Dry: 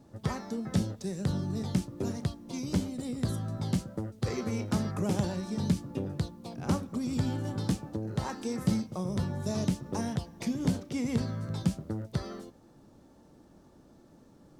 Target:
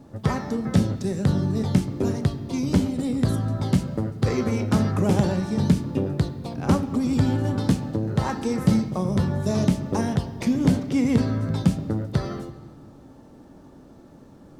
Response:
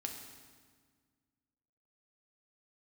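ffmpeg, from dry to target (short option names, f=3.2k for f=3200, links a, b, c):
-filter_complex "[0:a]asplit=2[a][b];[1:a]atrim=start_sample=2205,lowpass=3.9k[c];[b][c]afir=irnorm=-1:irlink=0,volume=-2dB[d];[a][d]amix=inputs=2:normalize=0,volume=5dB"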